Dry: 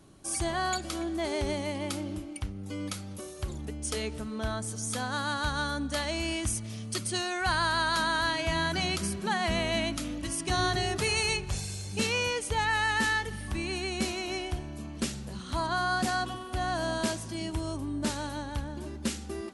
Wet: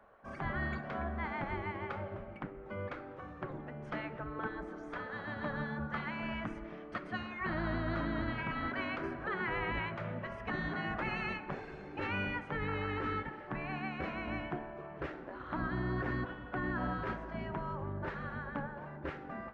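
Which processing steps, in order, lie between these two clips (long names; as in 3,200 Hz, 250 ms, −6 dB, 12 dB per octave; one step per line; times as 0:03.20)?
Chebyshev low-pass filter 1,700 Hz, order 3
mains-hum notches 50/100/150 Hz
gate on every frequency bin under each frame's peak −10 dB weak
compressor whose output falls as the input rises −39 dBFS, ratio −1
convolution reverb RT60 1.5 s, pre-delay 7 ms, DRR 15.5 dB
level +4 dB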